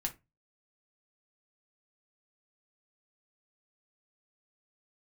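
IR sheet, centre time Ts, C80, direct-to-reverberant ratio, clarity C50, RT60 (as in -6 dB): 10 ms, 25.5 dB, 2.0 dB, 16.5 dB, 0.20 s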